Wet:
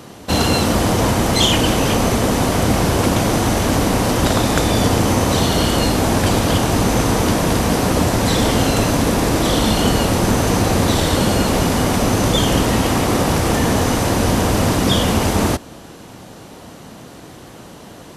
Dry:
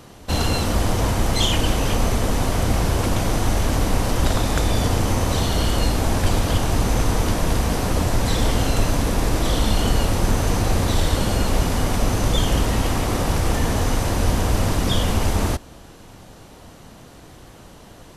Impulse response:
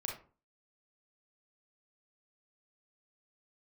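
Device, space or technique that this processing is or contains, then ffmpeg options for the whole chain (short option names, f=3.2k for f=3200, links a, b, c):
filter by subtraction: -filter_complex "[0:a]asplit=2[a][b];[b]lowpass=210,volume=-1[c];[a][c]amix=inputs=2:normalize=0,volume=6dB"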